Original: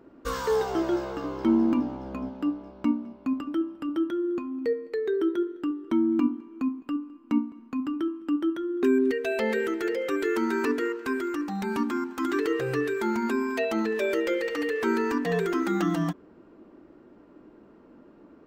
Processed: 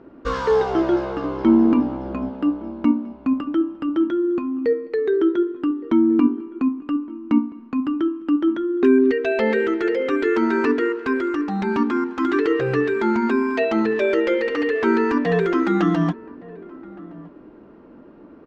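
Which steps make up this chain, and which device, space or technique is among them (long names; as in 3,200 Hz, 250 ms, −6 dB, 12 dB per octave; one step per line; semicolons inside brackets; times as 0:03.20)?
shout across a valley (high-frequency loss of the air 170 metres; slap from a distant wall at 200 metres, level −20 dB)
level +7.5 dB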